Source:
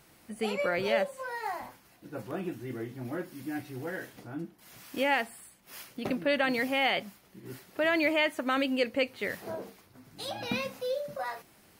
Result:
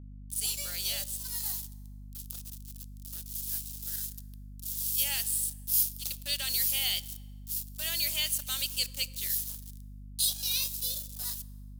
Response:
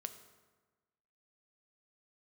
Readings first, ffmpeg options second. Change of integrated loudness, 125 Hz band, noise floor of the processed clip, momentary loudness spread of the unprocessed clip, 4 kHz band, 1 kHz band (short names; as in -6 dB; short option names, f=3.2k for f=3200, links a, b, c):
+1.5 dB, +0.5 dB, -46 dBFS, 18 LU, +5.5 dB, -19.5 dB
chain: -filter_complex "[0:a]aderivative,aeval=exprs='val(0)*gte(abs(val(0)),0.00355)':c=same,aexciter=amount=7.5:drive=5.4:freq=3.1k,aeval=exprs='val(0)+0.00708*(sin(2*PI*50*n/s)+sin(2*PI*2*50*n/s)/2+sin(2*PI*3*50*n/s)/3+sin(2*PI*4*50*n/s)/4+sin(2*PI*5*50*n/s)/5)':c=same,asplit=2[a][b];[1:a]atrim=start_sample=2205,asetrate=36162,aresample=44100[c];[b][c]afir=irnorm=-1:irlink=0,volume=-3.5dB[d];[a][d]amix=inputs=2:normalize=0,volume=-5dB"